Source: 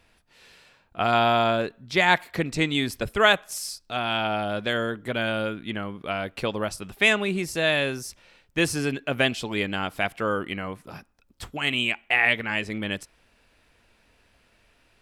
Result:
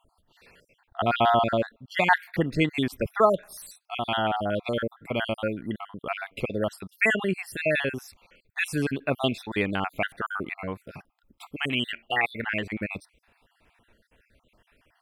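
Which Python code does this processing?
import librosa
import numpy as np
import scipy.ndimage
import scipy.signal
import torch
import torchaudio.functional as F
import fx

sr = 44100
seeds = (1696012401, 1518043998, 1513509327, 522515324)

y = fx.spec_dropout(x, sr, seeds[0], share_pct=51)
y = fx.peak_eq(y, sr, hz=6300.0, db=-11.5, octaves=1.3)
y = y * 10.0 ** (2.0 / 20.0)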